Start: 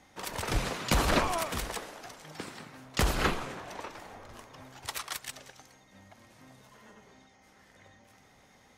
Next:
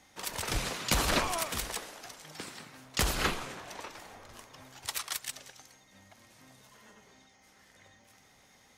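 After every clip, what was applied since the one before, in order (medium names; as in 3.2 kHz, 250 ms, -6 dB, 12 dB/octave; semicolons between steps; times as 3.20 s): treble shelf 2.3 kHz +8 dB; trim -4 dB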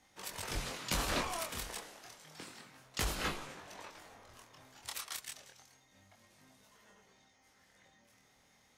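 chorus 0.3 Hz, delay 20 ms, depth 6.4 ms; trim -3.5 dB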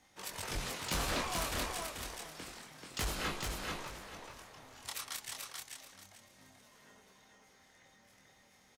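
saturation -29 dBFS, distortion -16 dB; feedback delay 435 ms, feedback 25%, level -3.5 dB; trim +1 dB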